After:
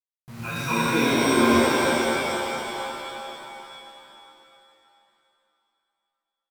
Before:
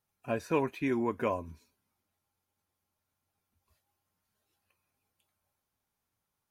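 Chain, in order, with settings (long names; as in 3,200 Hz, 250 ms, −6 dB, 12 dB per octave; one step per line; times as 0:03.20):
mains-hum notches 50/100/150/200/250 Hz
comb filter 0.8 ms, depth 63%
three-band delay without the direct sound lows, highs, mids 150/410 ms, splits 170/660 Hz
bit-depth reduction 8 bits, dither none
pitch vibrato 7.9 Hz 11 cents
reverb with rising layers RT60 3 s, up +7 semitones, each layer −2 dB, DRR −8 dB
level +1.5 dB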